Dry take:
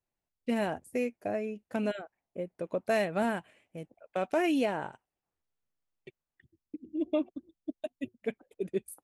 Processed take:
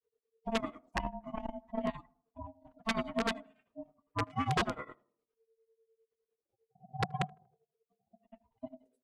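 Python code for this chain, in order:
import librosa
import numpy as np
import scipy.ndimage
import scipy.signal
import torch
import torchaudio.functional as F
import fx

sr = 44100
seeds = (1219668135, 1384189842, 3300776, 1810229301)

p1 = fx.hpss_only(x, sr, part='harmonic')
p2 = fx.low_shelf(p1, sr, hz=94.0, db=10.0)
p3 = fx.hum_notches(p2, sr, base_hz=60, count=8)
p4 = p3 + 0.64 * np.pad(p3, (int(4.0 * sr / 1000.0), 0))[:len(p3)]
p5 = fx.level_steps(p4, sr, step_db=11)
p6 = p4 + (p5 * 10.0 ** (-1.0 / 20.0))
p7 = fx.granulator(p6, sr, seeds[0], grain_ms=119.0, per_s=9.9, spray_ms=18.0, spread_st=0)
p8 = p7 * np.sin(2.0 * np.pi * 450.0 * np.arange(len(p7)) / sr)
p9 = (np.mod(10.0 ** (19.5 / 20.0) * p8 + 1.0, 2.0) - 1.0) / 10.0 ** (19.5 / 20.0)
p10 = fx.air_absorb(p9, sr, metres=95.0)
p11 = p10 + fx.echo_tape(p10, sr, ms=81, feedback_pct=51, wet_db=-23.0, lp_hz=1100.0, drive_db=25.0, wow_cents=34, dry=0)
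y = fx.transformer_sat(p11, sr, knee_hz=230.0)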